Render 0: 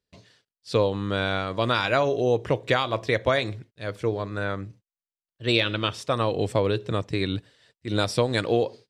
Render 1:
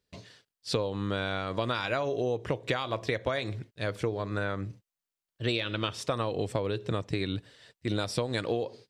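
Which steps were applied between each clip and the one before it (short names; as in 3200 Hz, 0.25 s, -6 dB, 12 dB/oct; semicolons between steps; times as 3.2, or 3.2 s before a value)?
compressor 6:1, threshold -31 dBFS, peak gain reduction 14 dB; gain +4 dB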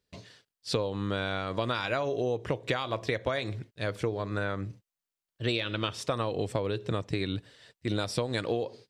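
nothing audible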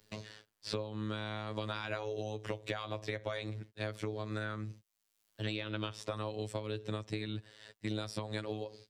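robotiser 107 Hz; three-band squash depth 70%; gain -6 dB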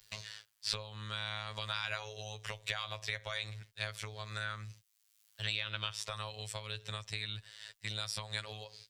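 passive tone stack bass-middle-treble 10-0-10; gain +8.5 dB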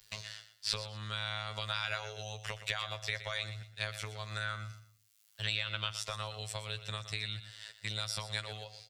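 feedback echo 0.12 s, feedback 27%, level -12.5 dB; gain +1.5 dB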